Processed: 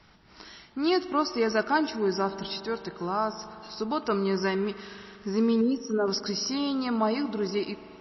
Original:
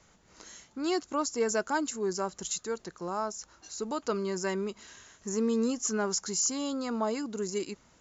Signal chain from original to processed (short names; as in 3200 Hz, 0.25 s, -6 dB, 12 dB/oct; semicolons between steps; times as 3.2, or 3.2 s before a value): 5.61–6.08 formant sharpening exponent 2; bell 520 Hz -9 dB 0.29 oct; spring tank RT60 3.5 s, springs 41 ms, chirp 75 ms, DRR 12.5 dB; gain +6 dB; MP3 24 kbps 16000 Hz